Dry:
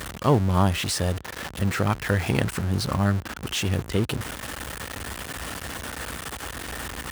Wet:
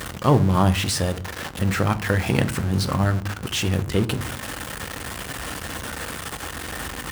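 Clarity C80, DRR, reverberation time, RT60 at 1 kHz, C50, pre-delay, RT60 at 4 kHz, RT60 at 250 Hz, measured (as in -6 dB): 22.0 dB, 10.0 dB, 0.50 s, 0.45 s, 18.5 dB, 4 ms, 0.25 s, 0.75 s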